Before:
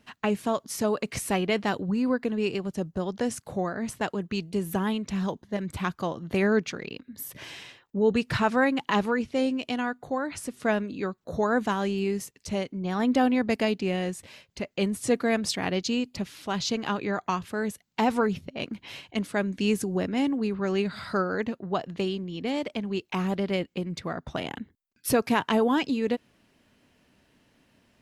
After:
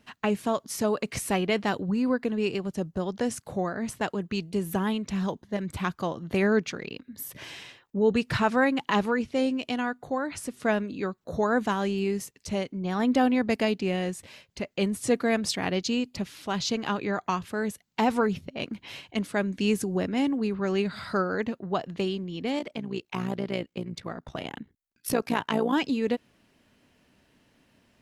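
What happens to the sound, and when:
22.59–25.73 s: AM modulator 59 Hz, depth 60%

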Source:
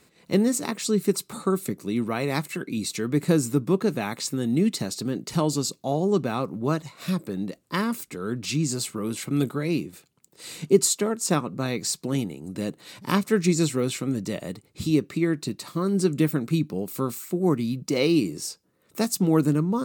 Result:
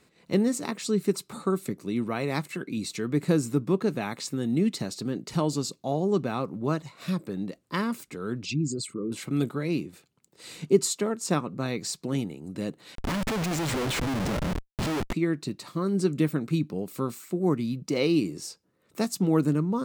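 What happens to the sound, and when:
8.43–9.12 s: resonances exaggerated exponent 2
12.95–15.13 s: Schmitt trigger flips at -36.5 dBFS
whole clip: treble shelf 7.9 kHz -8 dB; trim -2.5 dB

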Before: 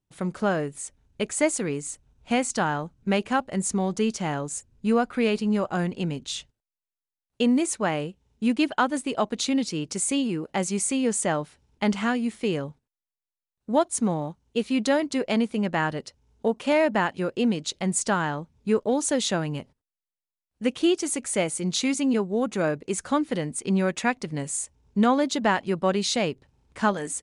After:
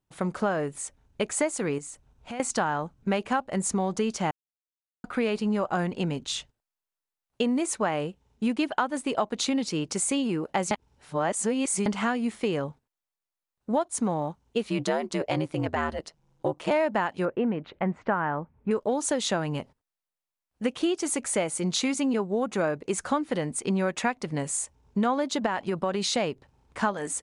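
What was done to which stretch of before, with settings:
1.78–2.40 s: compression 4:1, threshold -38 dBFS
4.31–5.04 s: mute
10.71–11.86 s: reverse
14.70–16.71 s: ring modulator 78 Hz
17.25–18.71 s: low-pass 2.2 kHz 24 dB/octave
25.46–26.13 s: compression, threshold -23 dBFS
whole clip: peaking EQ 920 Hz +6 dB 2 oct; compression 4:1, threshold -23 dBFS

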